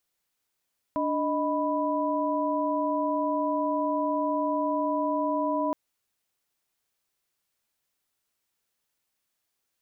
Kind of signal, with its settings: chord D4/D#5/B5 sine, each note -28.5 dBFS 4.77 s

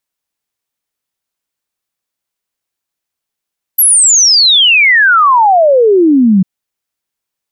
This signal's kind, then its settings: log sweep 12 kHz -> 180 Hz 2.65 s -4 dBFS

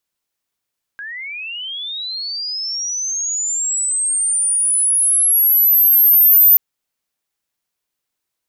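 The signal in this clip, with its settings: sweep linear 1.6 kHz -> 14 kHz -27 dBFS -> -6 dBFS 5.58 s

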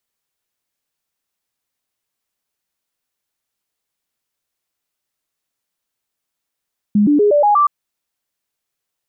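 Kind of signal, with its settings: stepped sine 207 Hz up, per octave 2, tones 6, 0.12 s, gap 0.00 s -9 dBFS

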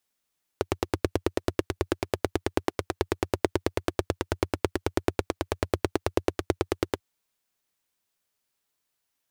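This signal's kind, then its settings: single-cylinder engine model, steady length 6.39 s, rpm 1100, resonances 91/350 Hz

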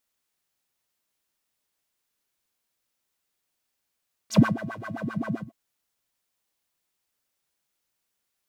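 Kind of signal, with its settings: synth patch with filter wobble A3, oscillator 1 square, oscillator 2 square, interval 0 st, oscillator 2 level -2.5 dB, sub -5 dB, noise 0 dB, filter bandpass, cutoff 200 Hz, Q 5.3, filter envelope 4 oct, filter decay 0.09 s, filter sustain 30%, attack 85 ms, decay 0.16 s, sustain -14 dB, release 0.16 s, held 1.06 s, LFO 7.6 Hz, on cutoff 1.8 oct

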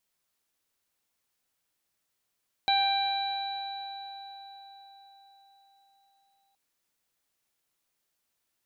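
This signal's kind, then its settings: additive tone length 3.87 s, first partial 788 Hz, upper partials -12/-8.5/-19/-1.5 dB, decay 4.92 s, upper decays 3.83/2.99/2.87/4.23 s, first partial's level -23.5 dB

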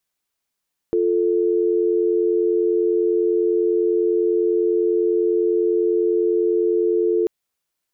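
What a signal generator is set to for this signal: call progress tone dial tone, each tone -18.5 dBFS 6.34 s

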